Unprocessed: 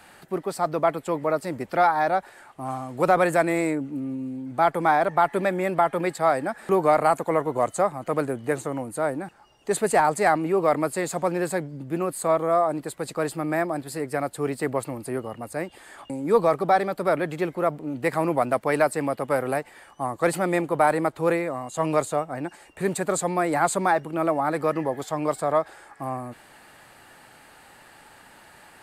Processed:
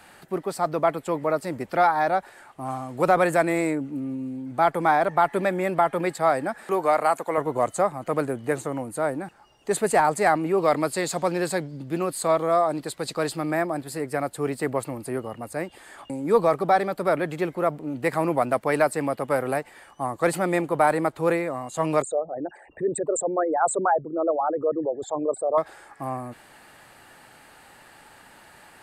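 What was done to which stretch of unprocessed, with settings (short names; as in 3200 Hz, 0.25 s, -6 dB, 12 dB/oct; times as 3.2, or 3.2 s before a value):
6.63–7.38 HPF 470 Hz 6 dB/oct
10.58–13.51 bell 4300 Hz +8 dB 1.1 oct
22.02–25.58 formant sharpening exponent 3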